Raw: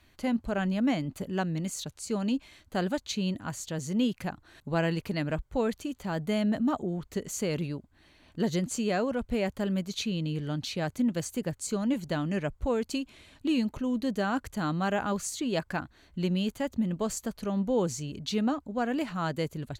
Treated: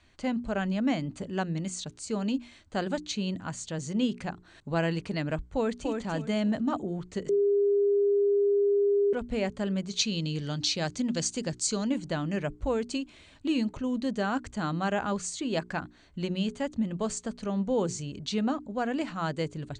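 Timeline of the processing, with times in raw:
5.49–5.98 s: echo throw 290 ms, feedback 25%, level -4.5 dB
7.29–9.13 s: bleep 404 Hz -20.5 dBFS
9.99–11.90 s: peaking EQ 5.2 kHz +11.5 dB 1.3 oct
whole clip: steep low-pass 9.2 kHz 96 dB/octave; hum notches 60/120/180/240/300/360/420 Hz

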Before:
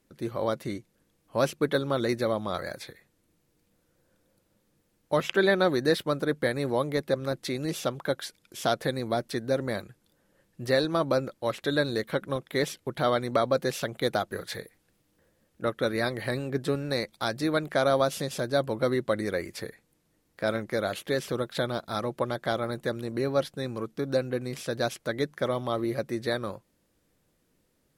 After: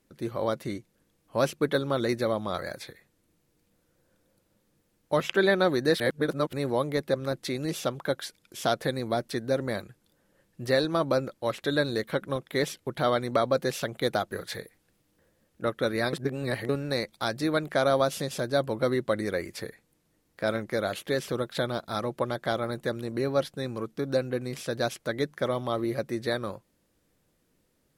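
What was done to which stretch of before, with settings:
6.00–6.53 s: reverse
16.13–16.69 s: reverse

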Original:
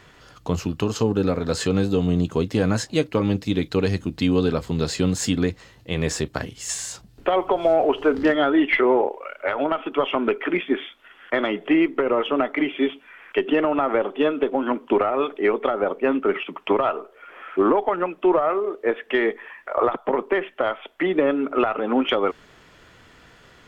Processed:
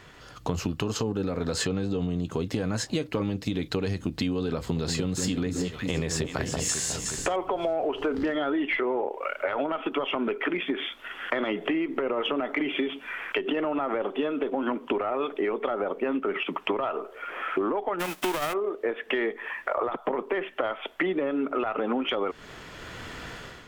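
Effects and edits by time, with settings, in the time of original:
1.65–2.11 s: distance through air 51 m
4.58–7.36 s: echo whose repeats swap between lows and highs 182 ms, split 1 kHz, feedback 65%, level -7 dB
10.49–13.57 s: compression 3:1, threshold -24 dBFS
17.99–18.52 s: formants flattened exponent 0.3
whole clip: level rider; peak limiter -8 dBFS; compression 6:1, threshold -25 dBFS

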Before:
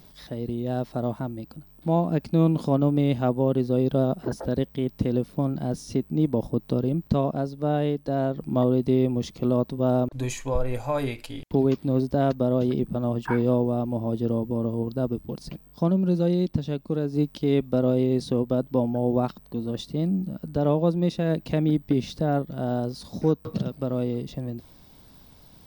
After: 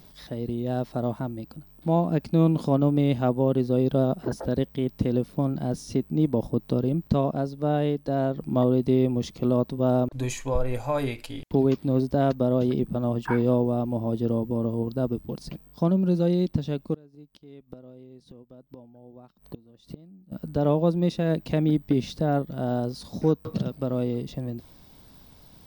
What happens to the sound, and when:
16.94–20.32 s: inverted gate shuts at -23 dBFS, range -25 dB

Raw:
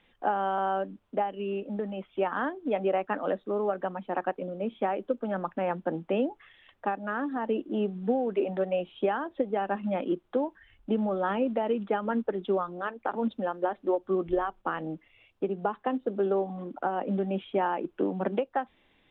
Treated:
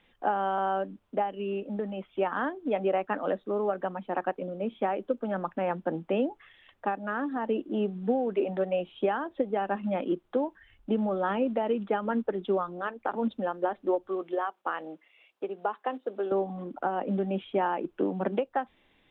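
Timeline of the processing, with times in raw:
14.08–16.32 s: high-pass 440 Hz

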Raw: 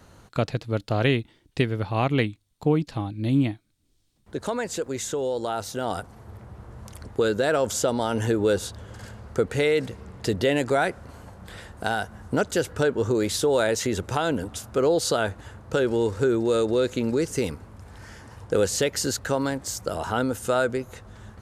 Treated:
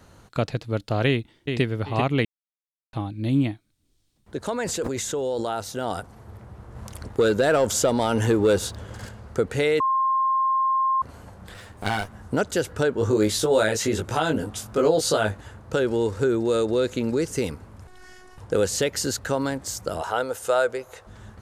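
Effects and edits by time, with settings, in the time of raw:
1.08–1.62 s: echo throw 390 ms, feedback 25%, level -5 dB
2.25–2.93 s: mute
4.52–5.54 s: decay stretcher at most 25 dB/s
6.75–9.09 s: waveshaping leveller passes 1
9.80–11.02 s: bleep 1.06 kHz -18.5 dBFS
11.54–12.13 s: comb filter that takes the minimum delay 9.9 ms
12.99–15.38 s: doubling 19 ms -3 dB
17.87–18.38 s: robot voice 367 Hz
20.01–21.07 s: resonant low shelf 350 Hz -11 dB, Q 1.5

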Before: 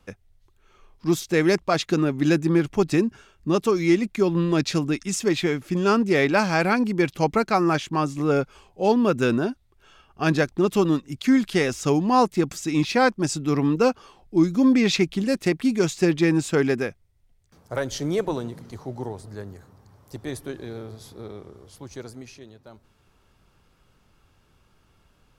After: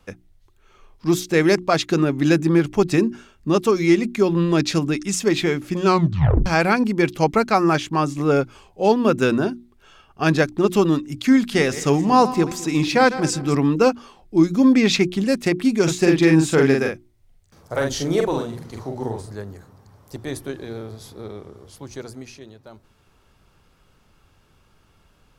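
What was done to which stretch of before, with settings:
5.85 s: tape stop 0.61 s
11.37–13.55 s: backward echo that repeats 108 ms, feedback 52%, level -14 dB
15.83–19.35 s: doubling 44 ms -3 dB
whole clip: hum notches 60/120/180/240/300/360 Hz; trim +3.5 dB

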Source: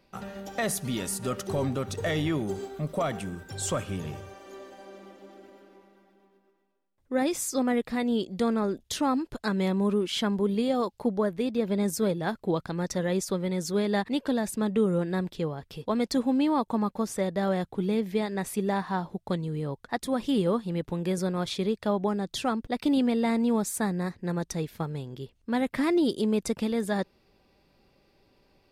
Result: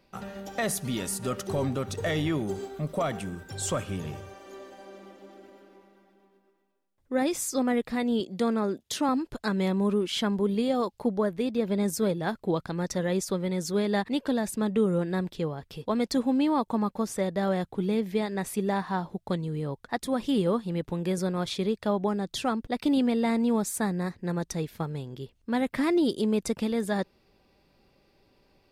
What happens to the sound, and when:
8.20–9.09 s: high-pass 130 Hz

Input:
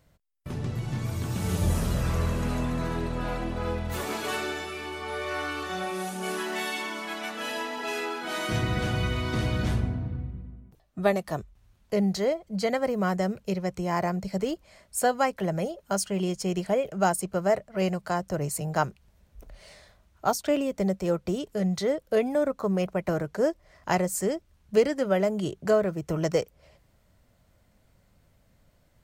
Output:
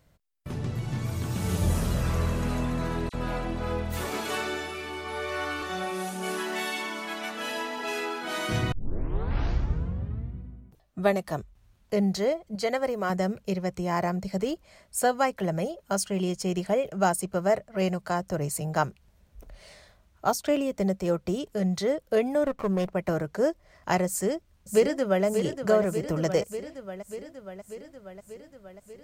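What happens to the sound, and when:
3.09–5.62 s: phase dispersion lows, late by 45 ms, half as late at 2.4 kHz
8.72 s: tape start 1.64 s
12.55–13.10 s: peaking EQ 180 Hz -10.5 dB
22.44–22.95 s: sliding maximum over 9 samples
24.07–25.25 s: echo throw 590 ms, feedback 70%, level -8 dB

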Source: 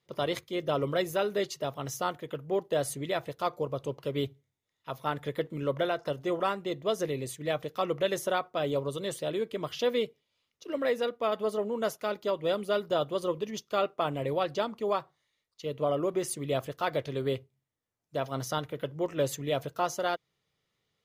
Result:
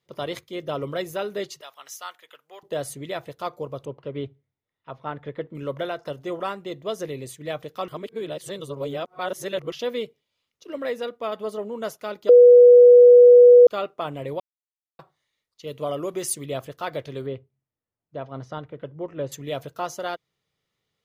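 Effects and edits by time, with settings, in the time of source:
1.61–2.63 s: high-pass 1.3 kHz
3.85–5.55 s: Bessel low-pass 2.1 kHz
7.88–9.72 s: reverse
12.29–13.67 s: bleep 488 Hz -6.5 dBFS
14.40–14.99 s: mute
15.67–16.46 s: treble shelf 3.2 kHz +9.5 dB
17.26–19.32 s: tape spacing loss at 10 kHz 29 dB

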